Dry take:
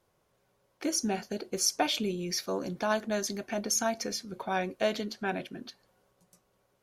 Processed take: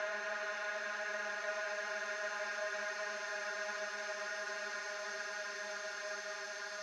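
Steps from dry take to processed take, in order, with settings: Paulstretch 45×, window 0.50 s, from 3.13 s; ladder band-pass 1.5 kHz, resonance 35%; trim +11 dB

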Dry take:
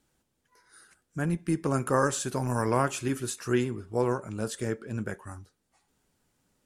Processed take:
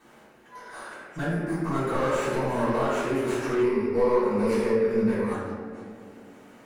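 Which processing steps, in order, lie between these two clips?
high-pass 58 Hz; treble shelf 9 kHz +11.5 dB; in parallel at -3 dB: sample-rate reducer 5.1 kHz; 1.28–1.74 s: on the sum: static phaser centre 1.2 kHz, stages 4; overdrive pedal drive 22 dB, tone 1.3 kHz, clips at -12.5 dBFS; reverberation RT60 1.4 s, pre-delay 3 ms, DRR -11.5 dB; compression 1.5:1, threshold -40 dBFS, peak gain reduction 14 dB; 3.63–5.34 s: rippled EQ curve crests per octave 0.88, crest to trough 10 dB; bucket-brigade echo 196 ms, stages 1024, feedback 61%, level -14 dB; trim -6 dB

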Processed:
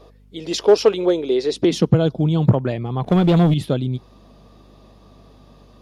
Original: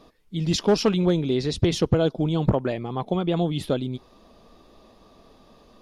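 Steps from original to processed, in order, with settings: high-pass sweep 430 Hz -> 120 Hz, 1.46–2.02 s; hum 50 Hz, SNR 30 dB; 3.04–3.54 s: waveshaping leveller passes 2; trim +1.5 dB

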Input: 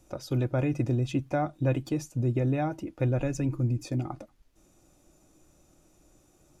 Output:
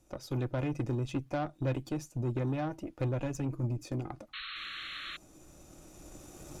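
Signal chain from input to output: recorder AGC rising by 7.9 dB/s; Chebyshev shaper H 8 -22 dB, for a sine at -14.5 dBFS; painted sound noise, 4.33–5.17 s, 1.1–4.3 kHz -36 dBFS; trim -6 dB

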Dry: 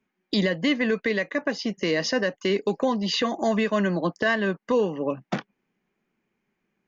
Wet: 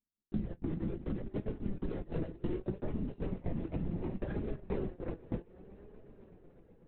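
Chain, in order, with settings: median filter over 41 samples; high-pass 120 Hz 6 dB/octave; peaking EQ 190 Hz +12 dB 1.5 oct; echo with a slow build-up 124 ms, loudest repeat 5, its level -12 dB; gate -18 dBFS, range -24 dB; LPC vocoder at 8 kHz whisper; compression 12:1, threshold -28 dBFS, peak gain reduction 20 dB; flange 0.67 Hz, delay 4.6 ms, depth 1.6 ms, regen +63%

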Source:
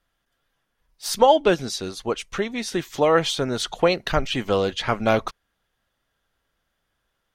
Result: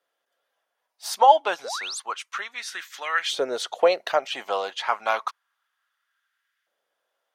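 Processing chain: LFO high-pass saw up 0.3 Hz 470–1800 Hz; painted sound rise, 1.64–2.00 s, 410–9800 Hz -29 dBFS; trim -4 dB

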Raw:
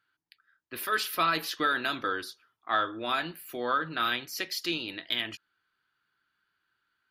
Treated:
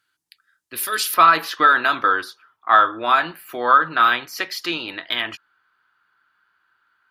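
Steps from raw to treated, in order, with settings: peaking EQ 8.9 kHz +13 dB 1.9 oct, from 1.14 s 1.1 kHz; trim +2.5 dB

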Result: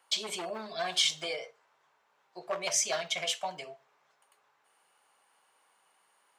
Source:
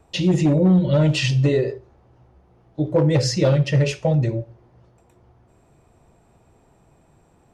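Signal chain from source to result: high-pass 1.1 kHz 12 dB/octave; tape speed +18%; trim -1.5 dB

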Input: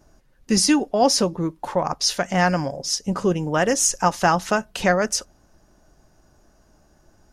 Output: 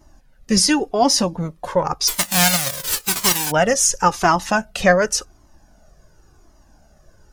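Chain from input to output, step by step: 2.07–3.50 s: formants flattened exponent 0.1; Shepard-style flanger falling 0.92 Hz; trim +7.5 dB

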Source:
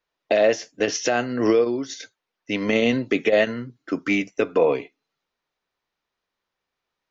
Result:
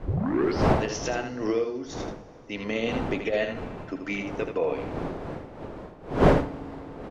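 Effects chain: tape start-up on the opening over 0.65 s; wind noise 520 Hz -22 dBFS; hum notches 60/120/180/240/300 Hz; on a send: delay 80 ms -7.5 dB; on the sum: FDN reverb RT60 3.4 s, high-frequency decay 0.95×, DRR 17.5 dB; trim -8.5 dB

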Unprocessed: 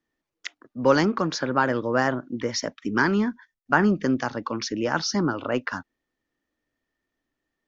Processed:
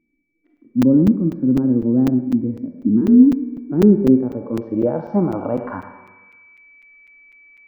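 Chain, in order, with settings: bass shelf 60 Hz +6.5 dB; Schroeder reverb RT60 1.2 s, combs from 31 ms, DRR 14.5 dB; in parallel at +0.5 dB: compression, threshold -28 dBFS, peak gain reduction 15 dB; 3.01–3.72 s: on the sum: frequency shift +41 Hz; whistle 2.3 kHz -41 dBFS; low-pass sweep 270 Hz -> 1.2 kHz, 3.26–6.32 s; harmonic-percussive split percussive -16 dB; on a send: thinning echo 104 ms, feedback 35%, high-pass 170 Hz, level -12 dB; on the sum: crackling interface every 0.25 s, samples 256, zero, from 0.57 s; trim +3.5 dB

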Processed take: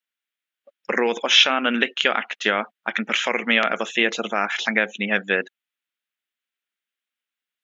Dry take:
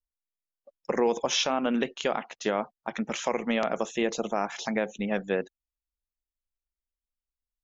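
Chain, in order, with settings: brick-wall FIR high-pass 170 Hz; high-order bell 2.2 kHz +12.5 dB; trim +2.5 dB

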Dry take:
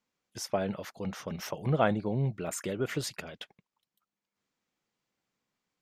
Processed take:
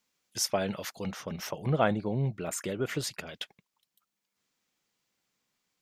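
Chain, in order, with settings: treble shelf 2.2 kHz +10.5 dB, from 1.11 s +2 dB, from 3.29 s +8.5 dB

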